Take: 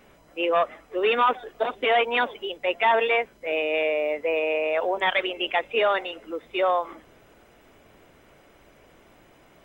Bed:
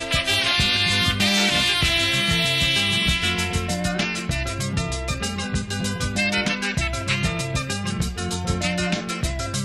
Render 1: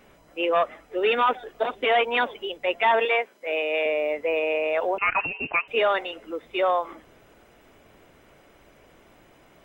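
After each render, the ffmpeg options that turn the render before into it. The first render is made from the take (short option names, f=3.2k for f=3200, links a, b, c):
-filter_complex "[0:a]asettb=1/sr,asplit=3[a][b][c];[a]atrim=end=0.834[d];[b]atrim=start=0.83:end=1.44,asetpts=PTS-STARTPTS,afade=t=in:d=0.004:c=qsin,afade=t=out:st=0.606:d=0.004:c=qsin,asuperstop=centerf=1100:order=4:qfactor=6.3[e];[c]atrim=start=1.436[f];[d][e]acrossfade=d=0.004:c1=hsin:c2=qsin[g];[g][f]acrossfade=d=0.004:c1=qsin:c2=hsin,asettb=1/sr,asplit=3[h][i][j];[h]atrim=end=3.054[k];[i]atrim=start=3.05:end=3.86,asetpts=PTS-STARTPTS,afade=t=in:d=0.004:c=qsin,afade=t=out:st=0.806:d=0.004:c=qsin,highpass=340[l];[j]atrim=start=3.856[m];[k][l]acrossfade=d=0.004:c1=hsin:c2=qsin[n];[n][m]acrossfade=d=0.004:c1=qsin:c2=hsin,asettb=1/sr,asplit=3[o][p][q];[o]atrim=end=4.984[r];[p]atrim=start=4.98:end=5.68,asetpts=PTS-STARTPTS,afade=t=in:d=0.004:c=qsin,afade=t=out:st=0.696:d=0.004:c=qsin,lowpass=f=2.6k:t=q:w=0.5098,lowpass=f=2.6k:t=q:w=0.6013,lowpass=f=2.6k:t=q:w=0.9,lowpass=f=2.6k:t=q:w=2.563,afreqshift=-3100[s];[q]atrim=start=5.676[t];[r][s]acrossfade=d=0.004:c1=hsin:c2=qsin[u];[u][t]acrossfade=d=0.004:c1=qsin:c2=hsin"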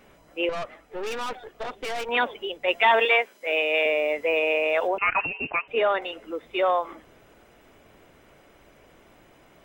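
-filter_complex "[0:a]asettb=1/sr,asplit=3[a][b][c];[a]atrim=end=0.494[d];[b]atrim=start=0.49:end=2.09,asetpts=PTS-STARTPTS,afade=t=in:d=0.004:c=qsin,afade=t=out:st=1.596:d=0.004:c=qsin,aeval=exprs='(tanh(28.2*val(0)+0.6)-tanh(0.6))/28.2':c=same[e];[c]atrim=start=2.086[f];[d][e]acrossfade=d=0.004:c1=hsin:c2=qsin[g];[g][f]acrossfade=d=0.004:c1=qsin:c2=hsin,asettb=1/sr,asplit=3[h][i][j];[h]atrim=end=2.684[k];[i]atrim=start=2.68:end=4.88,asetpts=PTS-STARTPTS,afade=t=in:d=0.004:c=qsin,afade=t=out:st=2.196:d=0.004:c=qsin,highshelf=f=2.3k:g=8[l];[j]atrim=start=4.876[m];[k][l]acrossfade=d=0.004:c1=hsin:c2=qsin[n];[n][m]acrossfade=d=0.004:c1=qsin:c2=hsin,asettb=1/sr,asplit=3[o][p][q];[o]atrim=end=5.504[r];[p]atrim=start=5.5:end=6.02,asetpts=PTS-STARTPTS,afade=t=in:d=0.004:c=qsin,afade=t=out:st=0.516:d=0.004:c=qsin,highshelf=f=3.4k:g=-10[s];[q]atrim=start=6.016[t];[r][s]acrossfade=d=0.004:c1=hsin:c2=qsin[u];[u][t]acrossfade=d=0.004:c1=qsin:c2=hsin"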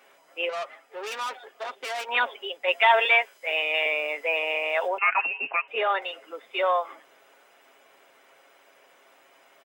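-af "highpass=610,aecho=1:1:7.4:0.44"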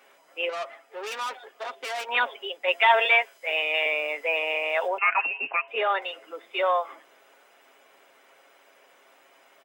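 -af "highpass=130,bandreject=f=339:t=h:w=4,bandreject=f=678:t=h:w=4,bandreject=f=1.017k:t=h:w=4"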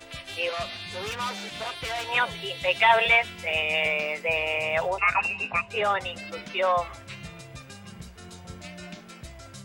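-filter_complex "[1:a]volume=-18dB[a];[0:a][a]amix=inputs=2:normalize=0"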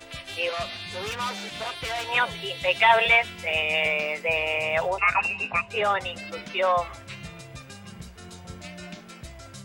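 -af "volume=1dB"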